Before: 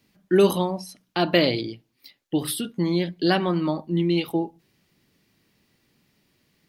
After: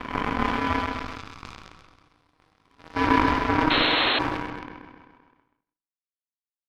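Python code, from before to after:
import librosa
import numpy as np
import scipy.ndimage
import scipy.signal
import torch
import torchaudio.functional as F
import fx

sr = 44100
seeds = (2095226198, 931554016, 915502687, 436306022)

y = fx.spec_blur(x, sr, span_ms=1260.0)
y = fx.peak_eq(y, sr, hz=260.0, db=-14.0, octaves=1.0, at=(0.79, 2.96))
y = fx.dereverb_blind(y, sr, rt60_s=1.8)
y = fx.peak_eq(y, sr, hz=540.0, db=10.5, octaves=1.5)
y = y * np.sin(2.0 * np.pi * 630.0 * np.arange(len(y)) / sr)
y = fx.room_shoebox(y, sr, seeds[0], volume_m3=3500.0, walls='furnished', distance_m=3.1)
y = fx.power_curve(y, sr, exponent=3.0)
y = scipy.signal.sosfilt(scipy.signal.butter(2, 6700.0, 'lowpass', fs=sr, output='sos'), y)
y = fx.echo_feedback(y, sr, ms=130, feedback_pct=43, wet_db=-6.5)
y = fx.leveller(y, sr, passes=1)
y = fx.spec_paint(y, sr, seeds[1], shape='noise', start_s=3.7, length_s=0.49, low_hz=230.0, high_hz=4300.0, level_db=-31.0)
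y = fx.sustainer(y, sr, db_per_s=33.0)
y = F.gain(torch.from_numpy(y), 8.5).numpy()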